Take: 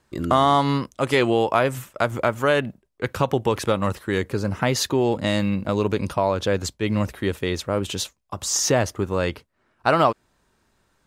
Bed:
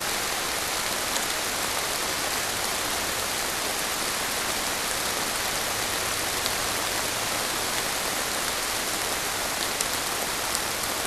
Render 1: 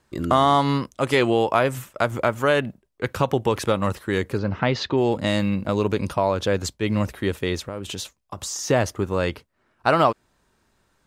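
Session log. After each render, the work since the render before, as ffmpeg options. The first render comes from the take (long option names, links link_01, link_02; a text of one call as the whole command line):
ffmpeg -i in.wav -filter_complex "[0:a]asplit=3[link_01][link_02][link_03];[link_01]afade=type=out:start_time=4.37:duration=0.02[link_04];[link_02]lowpass=frequency=4300:width=0.5412,lowpass=frequency=4300:width=1.3066,afade=type=in:start_time=4.37:duration=0.02,afade=type=out:start_time=4.96:duration=0.02[link_05];[link_03]afade=type=in:start_time=4.96:duration=0.02[link_06];[link_04][link_05][link_06]amix=inputs=3:normalize=0,asettb=1/sr,asplit=3[link_07][link_08][link_09];[link_07]atrim=end=7.584[link_10];[link_08]atrim=start=7.58:end=8.7,asetpts=PTS-STARTPTS,afade=type=in:duration=0.004:curve=qsin,afade=type=out:start_time=1.116:duration=0.004:curve=qsin,acompressor=threshold=-27dB:ratio=6:attack=3.2:release=140:knee=1:detection=peak[link_11];[link_09]atrim=start=8.696[link_12];[link_10][link_11]acrossfade=duration=0.004:curve1=hsin:curve2=qsin[link_13];[link_13][link_12]acrossfade=duration=0.004:curve1=qsin:curve2=hsin" out.wav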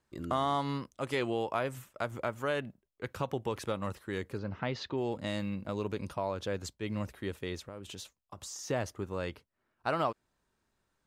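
ffmpeg -i in.wav -af "volume=-13dB" out.wav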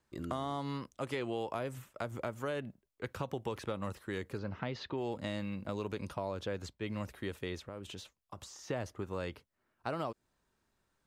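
ffmpeg -i in.wav -filter_complex "[0:a]acrossover=split=570|4000[link_01][link_02][link_03];[link_01]acompressor=threshold=-36dB:ratio=4[link_04];[link_02]acompressor=threshold=-40dB:ratio=4[link_05];[link_03]acompressor=threshold=-56dB:ratio=4[link_06];[link_04][link_05][link_06]amix=inputs=3:normalize=0" out.wav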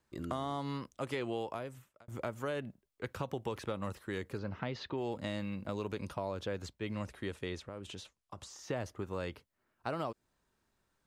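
ffmpeg -i in.wav -filter_complex "[0:a]asettb=1/sr,asplit=3[link_01][link_02][link_03];[link_01]atrim=end=6.934[link_04];[link_02]atrim=start=6.93:end=8.5,asetpts=PTS-STARTPTS,afade=type=in:duration=0.004:curve=qsin,afade=type=out:start_time=1.566:duration=0.004:curve=qsin,lowpass=frequency=11000:width=0.5412,lowpass=frequency=11000:width=1.3066[link_05];[link_03]atrim=start=8.496[link_06];[link_04][link_05]acrossfade=duration=0.004:curve1=hsin:curve2=qsin[link_07];[link_07][link_06]acrossfade=duration=0.004:curve1=qsin:curve2=hsin,asplit=2[link_08][link_09];[link_08]atrim=end=2.08,asetpts=PTS-STARTPTS,afade=type=out:start_time=1.36:duration=0.72[link_10];[link_09]atrim=start=2.08,asetpts=PTS-STARTPTS,afade=type=in:duration=0.004:curve=hsin[link_11];[link_10][link_11]concat=n=2:v=0:a=1" out.wav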